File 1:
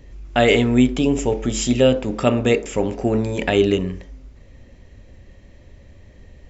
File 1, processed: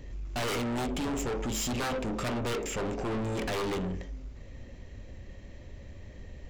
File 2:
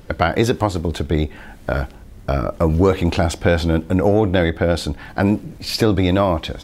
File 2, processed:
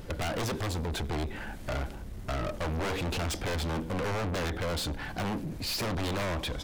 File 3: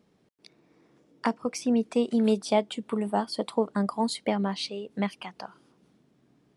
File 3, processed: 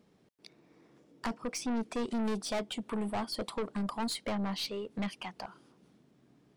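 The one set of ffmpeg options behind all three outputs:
-af "aeval=exprs='0.178*(abs(mod(val(0)/0.178+3,4)-2)-1)':channel_layout=same,aeval=exprs='(tanh(31.6*val(0)+0.15)-tanh(0.15))/31.6':channel_layout=same"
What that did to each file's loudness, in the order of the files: −13.5, −14.0, −7.5 LU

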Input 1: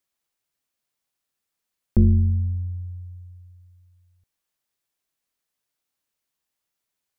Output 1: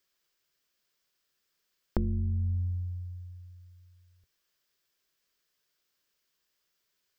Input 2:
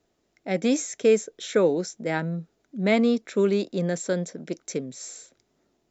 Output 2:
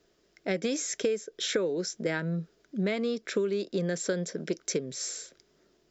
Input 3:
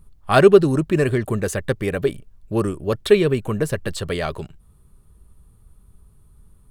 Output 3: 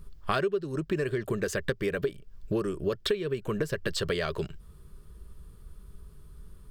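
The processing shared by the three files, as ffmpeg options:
-af "equalizer=frequency=100:width_type=o:width=0.33:gain=-10,equalizer=frequency=250:width_type=o:width=0.33:gain=-6,equalizer=frequency=400:width_type=o:width=0.33:gain=4,equalizer=frequency=800:width_type=o:width=0.33:gain=-8,equalizer=frequency=1600:width_type=o:width=0.33:gain=4,equalizer=frequency=3150:width_type=o:width=0.33:gain=3,equalizer=frequency=5000:width_type=o:width=0.33:gain=6,equalizer=frequency=10000:width_type=o:width=0.33:gain=-9,acompressor=threshold=-29dB:ratio=12,volume=3.5dB"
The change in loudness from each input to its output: −11.0, −6.0, −11.5 LU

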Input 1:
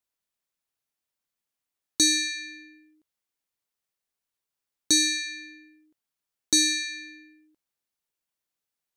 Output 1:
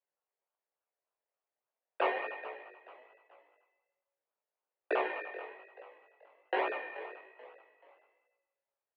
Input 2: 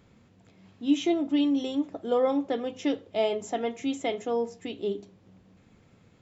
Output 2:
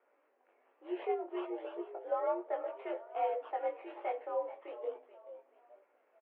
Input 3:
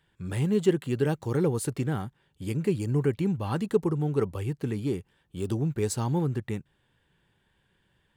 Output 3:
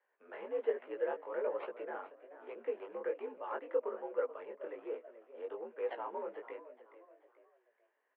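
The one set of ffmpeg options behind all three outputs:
-filter_complex "[0:a]acrossover=split=2200[link_01][link_02];[link_02]acrusher=samples=30:mix=1:aa=0.000001:lfo=1:lforange=18:lforate=3.4[link_03];[link_01][link_03]amix=inputs=2:normalize=0,asplit=4[link_04][link_05][link_06][link_07];[link_05]adelay=432,afreqshift=60,volume=-15.5dB[link_08];[link_06]adelay=864,afreqshift=120,volume=-24.6dB[link_09];[link_07]adelay=1296,afreqshift=180,volume=-33.7dB[link_10];[link_04][link_08][link_09][link_10]amix=inputs=4:normalize=0,flanger=delay=16:depth=6.2:speed=1.2,highpass=frequency=390:width_type=q:width=0.5412,highpass=frequency=390:width_type=q:width=1.307,lowpass=frequency=2800:width_type=q:width=0.5176,lowpass=frequency=2800:width_type=q:width=0.7071,lowpass=frequency=2800:width_type=q:width=1.932,afreqshift=67,volume=-3dB"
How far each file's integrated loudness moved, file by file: −13.5, −10.0, −12.0 LU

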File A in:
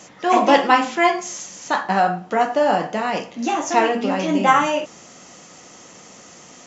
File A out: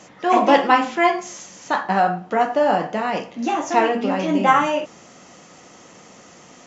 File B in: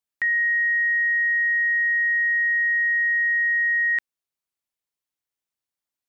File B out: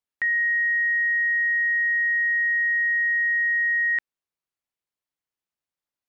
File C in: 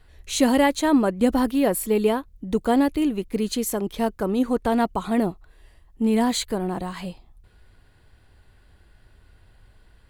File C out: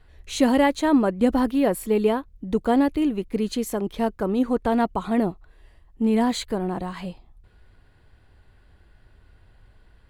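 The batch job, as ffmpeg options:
-af "highshelf=frequency=4800:gain=-8.5"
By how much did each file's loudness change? −0.5, −1.0, −0.5 LU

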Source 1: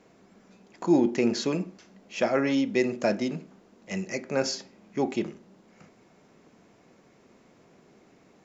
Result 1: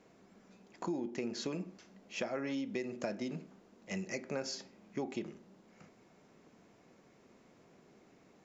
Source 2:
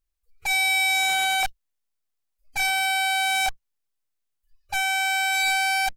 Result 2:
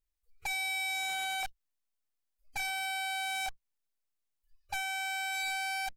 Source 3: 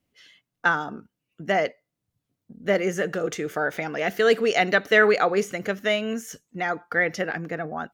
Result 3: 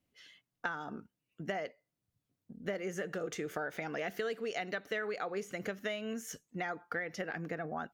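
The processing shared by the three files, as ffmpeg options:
-af "acompressor=threshold=-29dB:ratio=8,volume=-5dB"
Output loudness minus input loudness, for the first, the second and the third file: −12.5, −12.0, −15.0 LU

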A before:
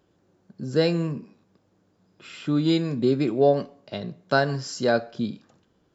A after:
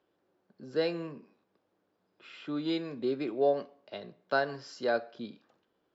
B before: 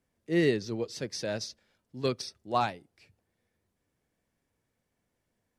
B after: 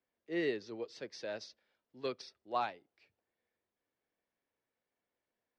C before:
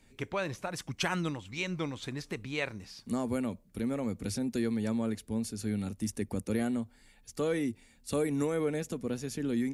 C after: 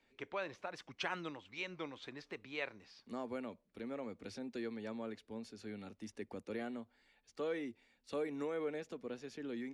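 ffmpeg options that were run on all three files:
-filter_complex "[0:a]acrossover=split=290 5000:gain=0.178 1 0.0708[link_01][link_02][link_03];[link_01][link_02][link_03]amix=inputs=3:normalize=0,volume=-6.5dB"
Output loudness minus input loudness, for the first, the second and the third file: −8.0, −8.5, −10.0 LU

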